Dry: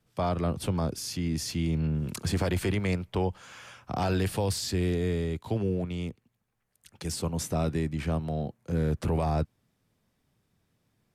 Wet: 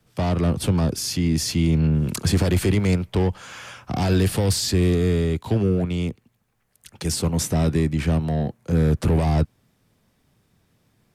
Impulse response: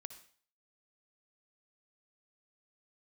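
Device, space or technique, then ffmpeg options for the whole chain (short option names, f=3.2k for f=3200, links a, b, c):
one-band saturation: -filter_complex "[0:a]acrossover=split=400|3800[a][b][c];[b]asoftclip=type=tanh:threshold=-36dB[d];[a][d][c]amix=inputs=3:normalize=0,volume=9dB"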